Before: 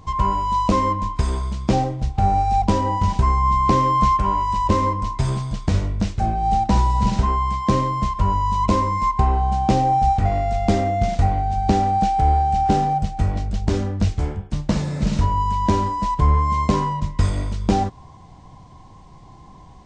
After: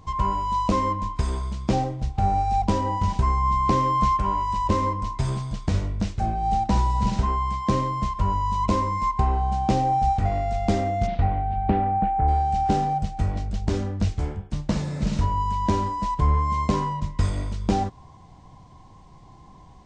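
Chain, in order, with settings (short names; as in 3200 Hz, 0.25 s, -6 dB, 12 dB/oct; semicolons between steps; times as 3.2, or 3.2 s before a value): 11.06–12.27 LPF 4000 Hz -> 1900 Hz 24 dB/oct; gain -4 dB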